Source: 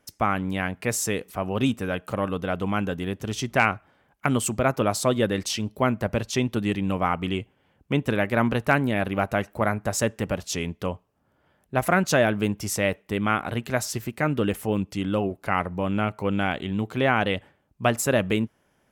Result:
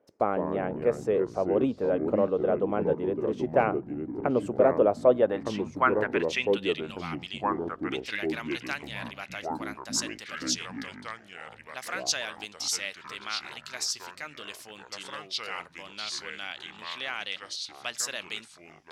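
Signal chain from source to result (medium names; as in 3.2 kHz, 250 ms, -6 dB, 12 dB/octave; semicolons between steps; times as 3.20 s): band-pass sweep 490 Hz -> 4.9 kHz, 4.98–6.99 s; ever faster or slower copies 106 ms, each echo -4 st, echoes 3, each echo -6 dB; trim +6 dB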